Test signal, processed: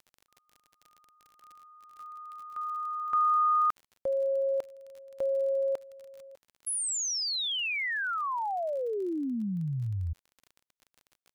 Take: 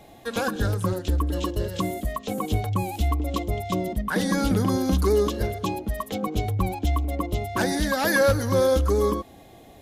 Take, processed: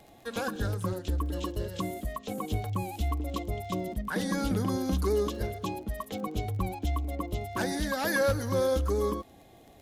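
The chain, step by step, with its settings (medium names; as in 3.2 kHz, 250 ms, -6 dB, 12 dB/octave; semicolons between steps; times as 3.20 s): crackle 41 per s -36 dBFS; trim -6.5 dB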